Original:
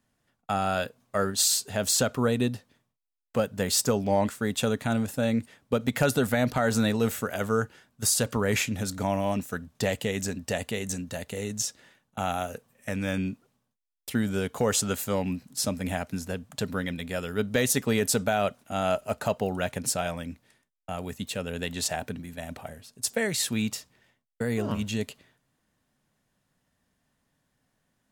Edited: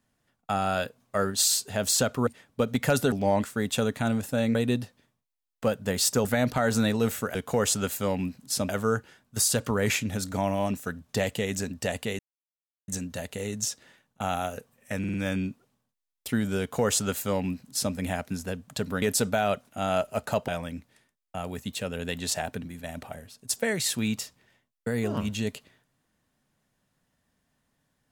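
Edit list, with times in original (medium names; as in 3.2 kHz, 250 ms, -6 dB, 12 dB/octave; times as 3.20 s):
2.27–3.97 s: swap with 5.40–6.25 s
10.85 s: insert silence 0.69 s
12.96 s: stutter 0.05 s, 4 plays
14.42–15.76 s: copy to 7.35 s
16.84–17.96 s: delete
19.42–20.02 s: delete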